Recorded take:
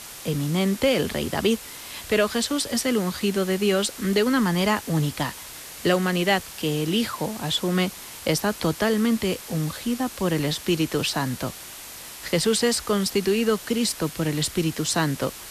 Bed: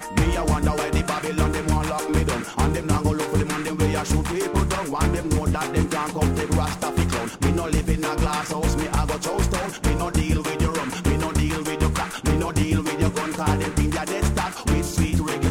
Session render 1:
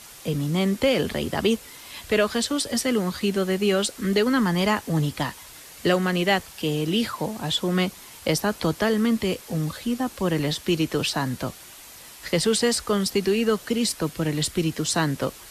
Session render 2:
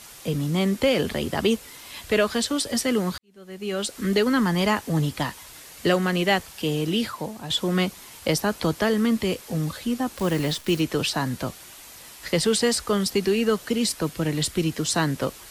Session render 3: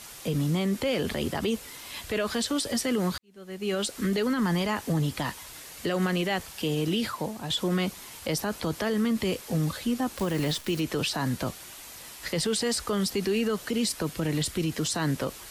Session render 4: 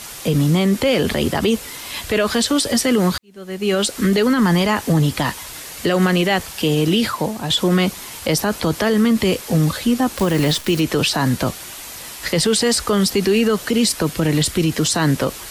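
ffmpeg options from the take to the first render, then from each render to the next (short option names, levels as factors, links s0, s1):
-af "afftdn=nr=6:nf=-40"
-filter_complex "[0:a]asettb=1/sr,asplit=3[s0][s1][s2];[s0]atrim=end=10.174[s3];[s1]atrim=start=10.17:end=10.81,asetpts=PTS-STARTPTS,afade=t=in:d=0.004:c=qsin,afade=t=out:st=0.636:d=0.004:c=qsin,acrusher=bits=7:dc=4:mix=0:aa=0.000001[s4];[s2]atrim=start=10.806[s5];[s3][s4]acrossfade=d=0.004:c1=hsin:c2=qsin[s6];[s6][s5]acrossfade=d=0.004:c1=qsin:c2=hsin,asplit=3[s7][s8][s9];[s7]atrim=end=3.18,asetpts=PTS-STARTPTS,afade=t=out:st=3.176:d=0.004:c=hsin[s10];[s8]atrim=start=3.18:end=7.5,asetpts=PTS-STARTPTS,afade=t=in:d=0.8:c=qua,afade=t=out:st=3.66:d=0.66:silence=0.446684[s11];[s9]atrim=start=7.5,asetpts=PTS-STARTPTS,afade=t=in:d=0.004:c=hsin:silence=0.446684[s12];[s10][s11][s12]concat=n=3:v=0:a=1"
-af "alimiter=limit=0.112:level=0:latency=1:release=42"
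-af "volume=3.35"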